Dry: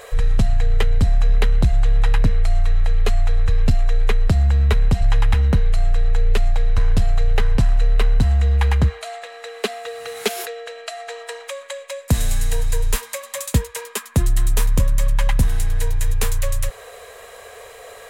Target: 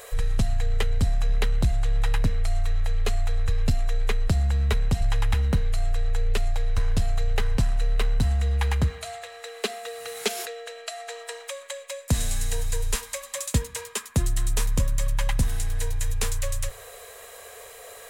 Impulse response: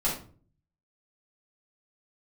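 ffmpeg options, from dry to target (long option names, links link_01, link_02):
-filter_complex "[0:a]acrossover=split=8800[link_01][link_02];[link_02]acompressor=threshold=-46dB:ratio=4:attack=1:release=60[link_03];[link_01][link_03]amix=inputs=2:normalize=0,crystalizer=i=1.5:c=0,asplit=2[link_04][link_05];[1:a]atrim=start_sample=2205[link_06];[link_05][link_06]afir=irnorm=-1:irlink=0,volume=-31dB[link_07];[link_04][link_07]amix=inputs=2:normalize=0,volume=-6dB"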